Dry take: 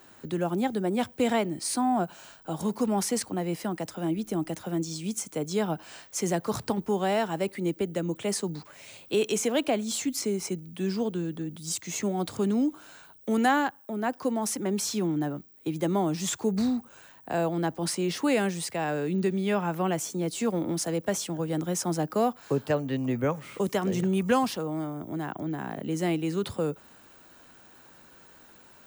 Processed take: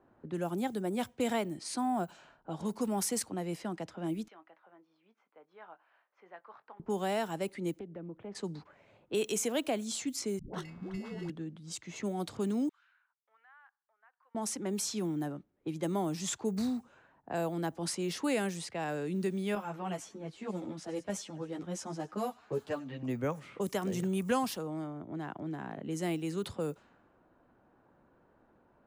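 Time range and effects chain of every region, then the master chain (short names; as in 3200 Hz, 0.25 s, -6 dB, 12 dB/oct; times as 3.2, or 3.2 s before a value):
4.28–6.8 HPF 1400 Hz + air absorption 300 m + doubler 22 ms -13 dB
7.79–8.35 tape spacing loss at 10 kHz 29 dB + compressor 2:1, threshold -38 dBFS + Doppler distortion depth 0.16 ms
10.39–11.3 sample-rate reducer 2400 Hz + negative-ratio compressor -31 dBFS, ratio -0.5 + dispersion highs, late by 0.148 s, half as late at 400 Hz
12.69–14.35 HPF 1500 Hz 24 dB/oct + compressor 3:1, threshold -40 dBFS + tape spacing loss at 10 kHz 33 dB
19.55–23.03 thin delay 96 ms, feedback 56%, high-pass 1400 Hz, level -17 dB + ensemble effect
whole clip: low-pass opened by the level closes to 820 Hz, open at -24 dBFS; high shelf 9400 Hz +10 dB; gain -6.5 dB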